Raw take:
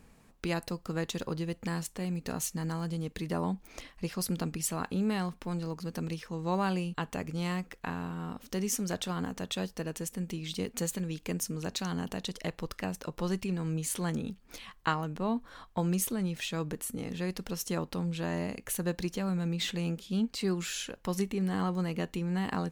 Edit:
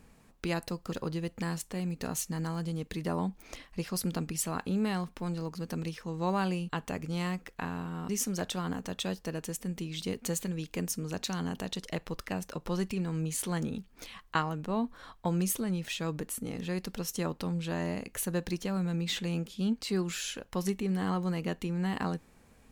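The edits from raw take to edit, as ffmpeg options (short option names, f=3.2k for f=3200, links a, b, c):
-filter_complex "[0:a]asplit=3[a][b][c];[a]atrim=end=0.922[d];[b]atrim=start=1.168:end=8.342[e];[c]atrim=start=8.608[f];[d][e]acrossfade=d=0.004:c1=hsin:c2=hsin[g];[g][f]acrossfade=d=0.004:c1=hsin:c2=hsin"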